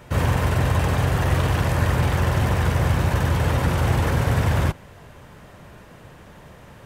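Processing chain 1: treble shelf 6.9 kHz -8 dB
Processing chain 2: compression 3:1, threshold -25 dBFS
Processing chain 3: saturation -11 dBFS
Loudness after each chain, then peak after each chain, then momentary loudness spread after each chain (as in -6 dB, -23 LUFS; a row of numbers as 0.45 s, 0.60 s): -21.5 LUFS, -27.5 LUFS, -22.0 LUFS; -8.0 dBFS, -15.0 dBFS, -12.0 dBFS; 1 LU, 18 LU, 1 LU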